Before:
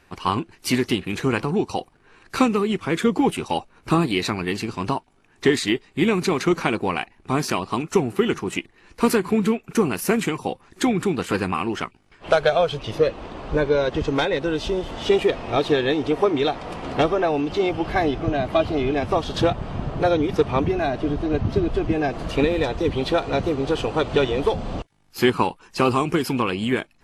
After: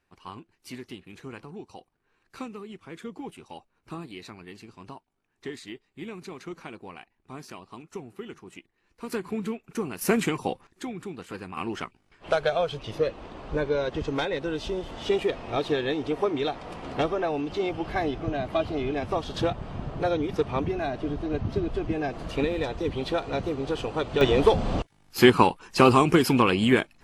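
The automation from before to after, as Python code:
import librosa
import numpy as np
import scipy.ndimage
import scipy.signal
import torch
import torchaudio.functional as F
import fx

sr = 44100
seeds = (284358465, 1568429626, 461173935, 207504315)

y = fx.gain(x, sr, db=fx.steps((0.0, -19.0), (9.12, -11.0), (10.01, -2.5), (10.67, -15.0), (11.57, -6.5), (24.21, 2.0)))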